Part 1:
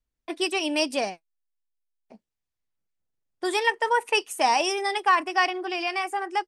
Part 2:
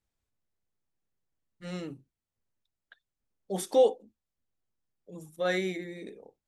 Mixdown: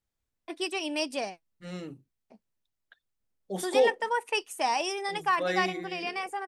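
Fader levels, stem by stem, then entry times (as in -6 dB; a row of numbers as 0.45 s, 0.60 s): -6.0 dB, -1.5 dB; 0.20 s, 0.00 s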